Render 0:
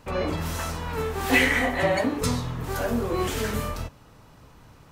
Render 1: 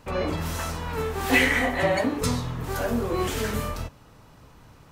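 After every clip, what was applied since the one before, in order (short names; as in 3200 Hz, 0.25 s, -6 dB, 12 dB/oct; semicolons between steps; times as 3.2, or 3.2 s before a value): nothing audible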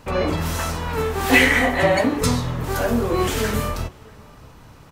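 outdoor echo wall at 110 m, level -24 dB; gain +5.5 dB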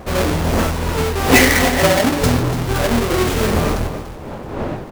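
half-waves squared off; wind noise 570 Hz -25 dBFS; echo 0.29 s -12.5 dB; gain -1 dB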